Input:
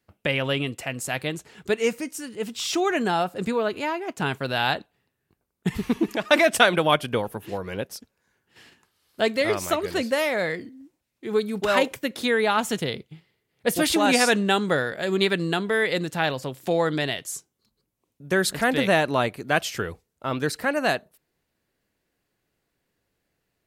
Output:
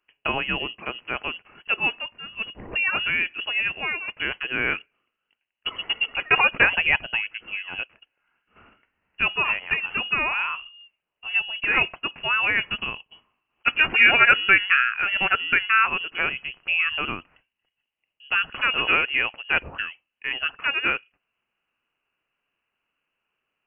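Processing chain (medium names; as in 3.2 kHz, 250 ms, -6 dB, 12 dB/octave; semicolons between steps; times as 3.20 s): time-frequency box 13.66–15.88 s, 600–1800 Hz +8 dB; Bessel high-pass 260 Hz, order 2; frequency inversion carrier 3.1 kHz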